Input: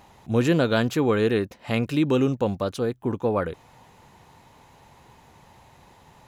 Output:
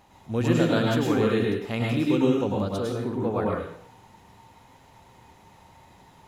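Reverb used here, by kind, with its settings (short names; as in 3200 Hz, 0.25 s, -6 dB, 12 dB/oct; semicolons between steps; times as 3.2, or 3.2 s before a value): plate-style reverb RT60 0.61 s, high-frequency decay 1×, pre-delay 90 ms, DRR -2.5 dB; gain -5.5 dB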